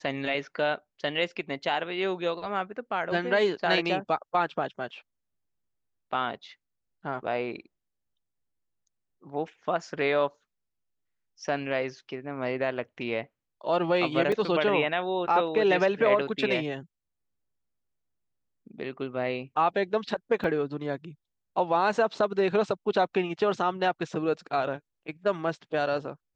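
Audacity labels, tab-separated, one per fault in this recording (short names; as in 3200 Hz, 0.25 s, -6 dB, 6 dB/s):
14.320000	14.320000	gap 3.9 ms
20.440000	20.440000	gap 2.3 ms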